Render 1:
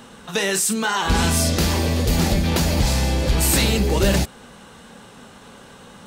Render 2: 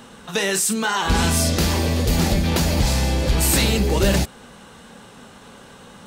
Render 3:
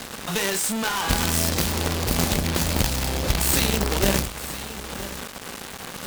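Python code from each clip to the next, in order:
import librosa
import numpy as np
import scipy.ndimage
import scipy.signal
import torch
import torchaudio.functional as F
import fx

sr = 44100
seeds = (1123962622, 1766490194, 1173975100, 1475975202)

y1 = x
y2 = fx.quant_companded(y1, sr, bits=2)
y2 = fx.tube_stage(y2, sr, drive_db=14.0, bias=0.5)
y2 = y2 + 10.0 ** (-14.0 / 20.0) * np.pad(y2, (int(966 * sr / 1000.0), 0))[:len(y2)]
y2 = y2 * librosa.db_to_amplitude(1.5)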